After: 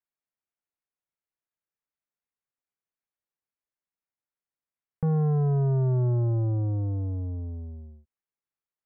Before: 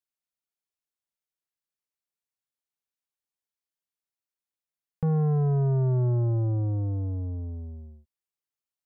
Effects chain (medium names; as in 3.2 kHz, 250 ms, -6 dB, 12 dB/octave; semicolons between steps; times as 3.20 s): inverse Chebyshev low-pass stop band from 9 kHz, stop band 70 dB